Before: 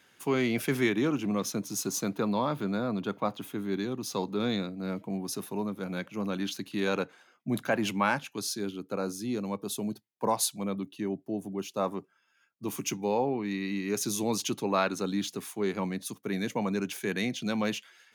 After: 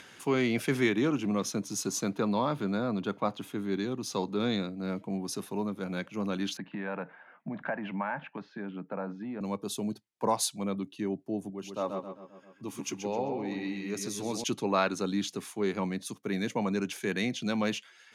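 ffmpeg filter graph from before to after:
-filter_complex "[0:a]asettb=1/sr,asplit=3[s0][s1][s2];[s0]atrim=end=6.574[s3];[s1]atrim=start=6.57:end=9.41,asetpts=PTS-STARTPTS,afade=t=in:d=0.004:c=qsin,afade=t=out:st=2.836:d=0.004:c=qsin,acompressor=threshold=0.0224:ratio=5:attack=3.2:release=140:knee=1:detection=peak,highpass=f=140:w=0.5412,highpass=f=140:w=1.3066,equalizer=f=170:t=q:w=4:g=7,equalizer=f=370:t=q:w=4:g=-6,equalizer=f=630:t=q:w=4:g=7,equalizer=f=900:t=q:w=4:g=7,equalizer=f=1700:t=q:w=4:g=7,lowpass=f=2400:w=0.5412,lowpass=f=2400:w=1.3066[s4];[s2]atrim=start=9.406[s5];[s3][s4]acrossfade=d=0.004:c1=hsin:c2=qsin[s6];[s6][s5]acrossfade=d=0.004:c1=qsin:c2=hsin,asettb=1/sr,asplit=3[s7][s8][s9];[s7]atrim=end=11.504[s10];[s8]atrim=start=11.5:end=14.44,asetpts=PTS-STARTPTS,afade=t=in:d=0.004:c=qsin,afade=t=out:st=2.936:d=0.004:c=qsin,flanger=delay=1.5:depth=2.2:regen=73:speed=1.2:shape=sinusoidal,asplit=2[s11][s12];[s12]adelay=131,lowpass=f=4400:p=1,volume=0.562,asplit=2[s13][s14];[s14]adelay=131,lowpass=f=4400:p=1,volume=0.43,asplit=2[s15][s16];[s16]adelay=131,lowpass=f=4400:p=1,volume=0.43,asplit=2[s17][s18];[s18]adelay=131,lowpass=f=4400:p=1,volume=0.43,asplit=2[s19][s20];[s20]adelay=131,lowpass=f=4400:p=1,volume=0.43[s21];[s11][s13][s15][s17][s19][s21]amix=inputs=6:normalize=0,atrim=end_sample=129654[s22];[s9]atrim=start=14.436[s23];[s10][s22]acrossfade=d=0.004:c1=hsin:c2=qsin[s24];[s24][s23]acrossfade=d=0.004:c1=qsin:c2=hsin,acompressor=mode=upward:threshold=0.00794:ratio=2.5,lowpass=9800"

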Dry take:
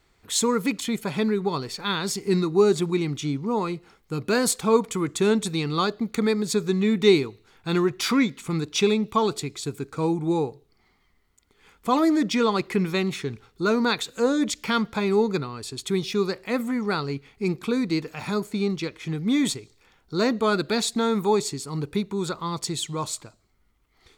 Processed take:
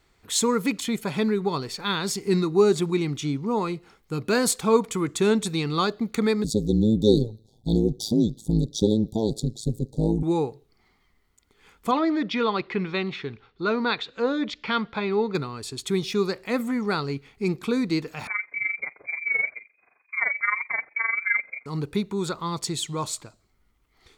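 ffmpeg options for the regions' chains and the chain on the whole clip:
-filter_complex "[0:a]asettb=1/sr,asplit=3[s0][s1][s2];[s0]atrim=end=6.444[s3];[s1]atrim=start=6.44:end=10.23,asetpts=PTS-STARTPTS,afade=t=in:d=0.004:c=qsin,afade=t=out:st=3.786:d=0.004:c=qsin,asuperstop=centerf=1700:order=20:qfactor=0.63,equalizer=f=120:w=1:g=14,tremolo=f=110:d=0.889[s4];[s2]atrim=start=10.226[s5];[s3][s4]acrossfade=d=0.004:c1=hsin:c2=qsin[s6];[s6][s5]acrossfade=d=0.004:c1=qsin:c2=hsin,asettb=1/sr,asplit=3[s7][s8][s9];[s7]atrim=end=11.914[s10];[s8]atrim=start=11.91:end=15.35,asetpts=PTS-STARTPTS,afade=t=in:d=0.004:c=qsin,afade=t=out:st=3.436:d=0.004:c=qsin,lowpass=f=4100:w=0.5412,lowpass=f=4100:w=1.3066,lowshelf=f=410:g=-5.5[s11];[s9]atrim=start=15.346[s12];[s10][s11]acrossfade=d=0.004:c1=hsin:c2=qsin[s13];[s13][s12]acrossfade=d=0.004:c1=qsin:c2=hsin,asettb=1/sr,asplit=3[s14][s15][s16];[s14]atrim=end=18.274[s17];[s15]atrim=start=18.27:end=21.66,asetpts=PTS-STARTPTS,afade=t=in:d=0.004:c=qsin,afade=t=out:st=3.386:d=0.004:c=qsin,lowpass=f=2100:t=q:w=0.5098,lowpass=f=2100:t=q:w=0.6013,lowpass=f=2100:t=q:w=0.9,lowpass=f=2100:t=q:w=2.563,afreqshift=-2500,tremolo=f=23:d=0.75,highpass=f=230:p=1[s18];[s16]atrim=start=21.656[s19];[s17][s18]acrossfade=d=0.004:c1=hsin:c2=qsin[s20];[s20][s19]acrossfade=d=0.004:c1=qsin:c2=hsin"

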